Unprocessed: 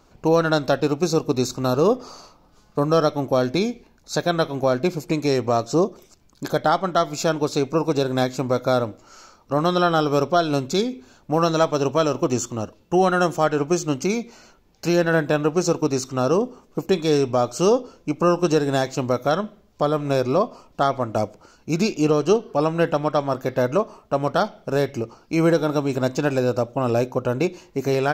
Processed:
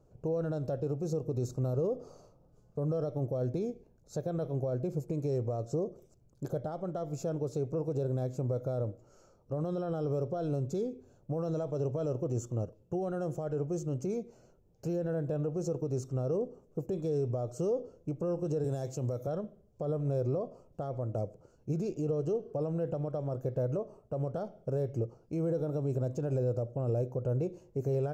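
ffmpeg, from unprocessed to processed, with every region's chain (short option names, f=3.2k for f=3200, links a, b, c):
-filter_complex "[0:a]asettb=1/sr,asplit=3[a][b][c];[a]atrim=end=18.644[d];[b]atrim=start=18.64:end=19.27,asetpts=PTS-STARTPTS,afade=t=in:d=0.004:c=qsin,afade=t=out:st=0.626:d=0.004:c=qsin,highpass=f=77:w=0.5412,highpass=f=77:w=1.3066,highshelf=f=2.7k:g=9[e];[c]atrim=start=19.266[f];[d][e]acrossfade=d=0.004:c1=hsin:c2=qsin[g];[g][f]acrossfade=d=0.004:c1=qsin:c2=hsin,highshelf=f=2.4k:g=-10.5,alimiter=limit=-18dB:level=0:latency=1:release=42,equalizer=f=125:t=o:w=1:g=10,equalizer=f=250:t=o:w=1:g=-6,equalizer=f=500:t=o:w=1:g=7,equalizer=f=1k:t=o:w=1:g=-9,equalizer=f=2k:t=o:w=1:g=-11,equalizer=f=4k:t=o:w=1:g=-10,equalizer=f=8k:t=o:w=1:g=4,volume=-8.5dB"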